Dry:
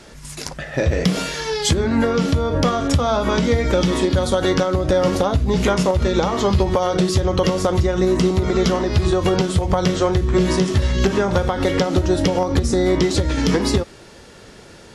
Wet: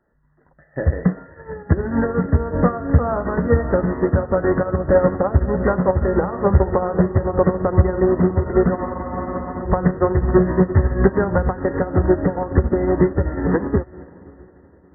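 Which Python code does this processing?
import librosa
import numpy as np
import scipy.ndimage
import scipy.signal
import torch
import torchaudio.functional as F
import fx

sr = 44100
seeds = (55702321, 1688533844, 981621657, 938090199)

p1 = fx.brickwall_lowpass(x, sr, high_hz=2000.0)
p2 = p1 + fx.echo_diffused(p1, sr, ms=541, feedback_pct=70, wet_db=-10.5, dry=0)
p3 = fx.spec_freeze(p2, sr, seeds[0], at_s=8.78, hold_s=0.85)
p4 = fx.upward_expand(p3, sr, threshold_db=-31.0, expansion=2.5)
y = p4 * 10.0 ** (5.0 / 20.0)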